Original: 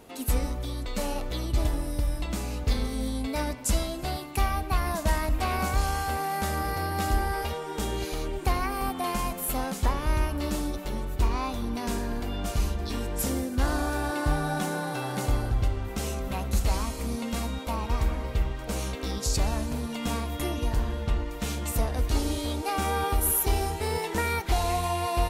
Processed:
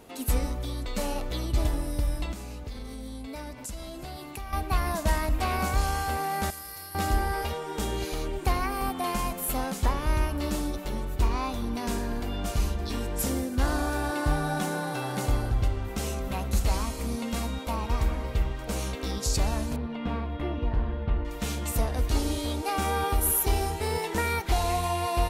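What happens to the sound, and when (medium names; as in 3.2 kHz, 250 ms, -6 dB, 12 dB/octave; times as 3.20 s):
2.32–4.53 s: compression 4:1, threshold -36 dBFS
6.50–6.95 s: pre-emphasis filter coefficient 0.9
19.76–21.25 s: distance through air 400 m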